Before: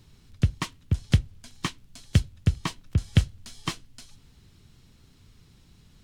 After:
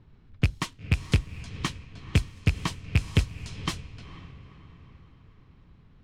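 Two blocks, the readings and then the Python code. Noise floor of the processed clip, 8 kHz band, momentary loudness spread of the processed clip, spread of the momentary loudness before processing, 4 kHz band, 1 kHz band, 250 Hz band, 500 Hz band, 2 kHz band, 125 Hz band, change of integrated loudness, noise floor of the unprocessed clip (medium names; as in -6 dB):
-56 dBFS, -0.5 dB, 19 LU, 11 LU, +0.5 dB, +0.5 dB, -1.0 dB, +2.5 dB, +4.0 dB, -1.5 dB, -1.0 dB, -57 dBFS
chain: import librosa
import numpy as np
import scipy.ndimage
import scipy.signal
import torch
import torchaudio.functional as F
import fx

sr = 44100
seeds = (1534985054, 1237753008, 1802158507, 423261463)

y = fx.rattle_buzz(x, sr, strikes_db=-21.0, level_db=-12.0)
y = np.clip(y, -10.0 ** (-14.0 / 20.0), 10.0 ** (-14.0 / 20.0))
y = fx.echo_diffused(y, sr, ms=482, feedback_pct=51, wet_db=-14.0)
y = fx.env_lowpass(y, sr, base_hz=1600.0, full_db=-26.0)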